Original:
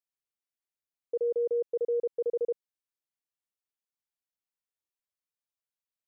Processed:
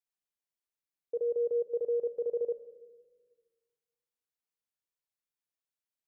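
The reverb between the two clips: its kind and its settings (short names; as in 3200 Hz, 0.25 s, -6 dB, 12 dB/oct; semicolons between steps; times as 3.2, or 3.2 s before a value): shoebox room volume 1500 m³, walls mixed, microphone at 0.41 m; gain -3 dB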